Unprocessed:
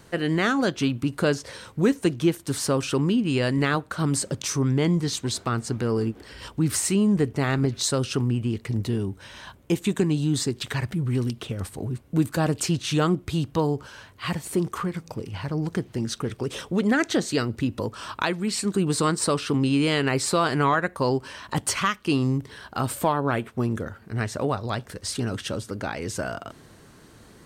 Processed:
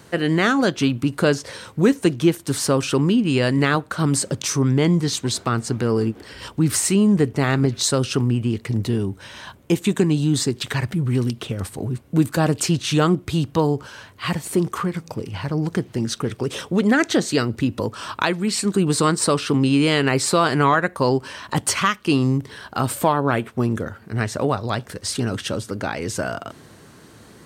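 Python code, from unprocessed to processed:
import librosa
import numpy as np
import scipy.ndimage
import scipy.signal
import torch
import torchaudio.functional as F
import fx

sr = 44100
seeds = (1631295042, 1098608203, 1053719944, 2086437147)

y = scipy.signal.sosfilt(scipy.signal.butter(2, 73.0, 'highpass', fs=sr, output='sos'), x)
y = F.gain(torch.from_numpy(y), 4.5).numpy()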